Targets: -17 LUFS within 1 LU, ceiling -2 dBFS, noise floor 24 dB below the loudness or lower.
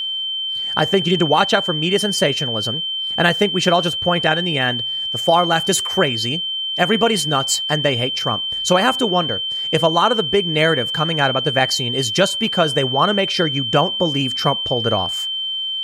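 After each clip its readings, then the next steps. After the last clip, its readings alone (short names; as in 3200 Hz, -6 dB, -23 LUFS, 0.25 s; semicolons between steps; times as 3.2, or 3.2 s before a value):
steady tone 3100 Hz; tone level -21 dBFS; loudness -17.5 LUFS; peak -1.5 dBFS; loudness target -17.0 LUFS
-> notch 3100 Hz, Q 30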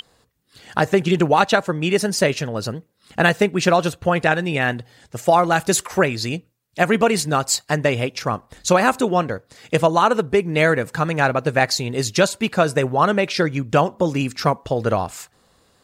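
steady tone none; loudness -19.5 LUFS; peak -1.5 dBFS; loudness target -17.0 LUFS
-> gain +2.5 dB; limiter -2 dBFS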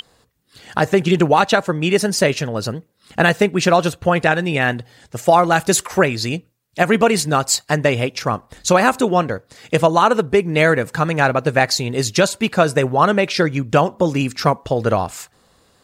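loudness -17.0 LUFS; peak -2.0 dBFS; noise floor -60 dBFS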